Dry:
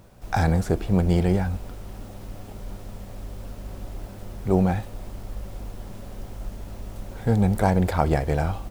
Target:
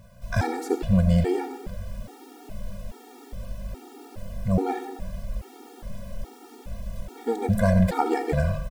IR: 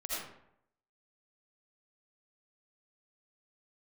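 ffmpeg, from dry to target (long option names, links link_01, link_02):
-filter_complex "[0:a]aecho=1:1:376:0.0794,asplit=2[link_01][link_02];[1:a]atrim=start_sample=2205[link_03];[link_02][link_03]afir=irnorm=-1:irlink=0,volume=-9dB[link_04];[link_01][link_04]amix=inputs=2:normalize=0,afftfilt=real='re*gt(sin(2*PI*1.2*pts/sr)*(1-2*mod(floor(b*sr/1024/240),2)),0)':imag='im*gt(sin(2*PI*1.2*pts/sr)*(1-2*mod(floor(b*sr/1024/240),2)),0)':win_size=1024:overlap=0.75"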